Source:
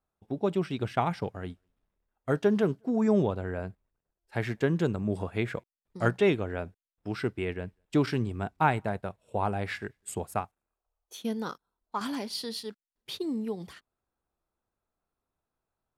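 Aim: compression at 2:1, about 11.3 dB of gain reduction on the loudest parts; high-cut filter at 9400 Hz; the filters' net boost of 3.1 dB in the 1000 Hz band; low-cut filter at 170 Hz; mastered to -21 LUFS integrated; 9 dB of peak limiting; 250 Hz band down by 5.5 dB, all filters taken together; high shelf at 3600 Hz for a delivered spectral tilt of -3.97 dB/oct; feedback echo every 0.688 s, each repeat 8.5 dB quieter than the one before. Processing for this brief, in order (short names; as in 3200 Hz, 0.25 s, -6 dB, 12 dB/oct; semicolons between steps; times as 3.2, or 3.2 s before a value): HPF 170 Hz; LPF 9400 Hz; bell 250 Hz -6 dB; bell 1000 Hz +4 dB; high shelf 3600 Hz +6 dB; compressor 2:1, threshold -38 dBFS; limiter -26.5 dBFS; feedback echo 0.688 s, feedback 38%, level -8.5 dB; gain +19.5 dB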